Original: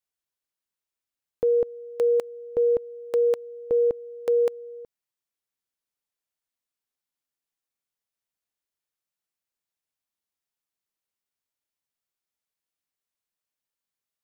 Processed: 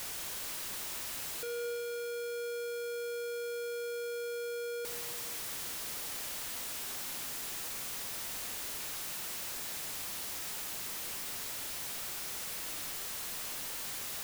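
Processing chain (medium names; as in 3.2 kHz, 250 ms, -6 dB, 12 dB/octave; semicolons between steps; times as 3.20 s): one-bit comparator; Schroeder reverb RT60 3.5 s, combs from 26 ms, DRR 8.5 dB; trim -8 dB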